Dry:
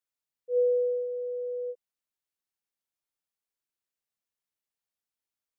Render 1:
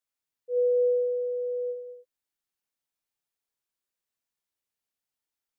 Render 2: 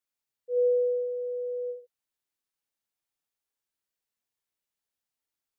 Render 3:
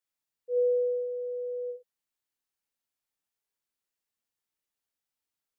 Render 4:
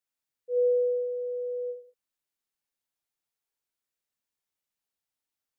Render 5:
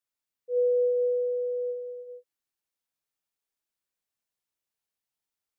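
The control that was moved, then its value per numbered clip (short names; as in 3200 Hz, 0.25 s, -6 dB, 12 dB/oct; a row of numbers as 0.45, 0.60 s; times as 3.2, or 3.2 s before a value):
non-linear reverb, gate: 310, 130, 90, 200, 500 ms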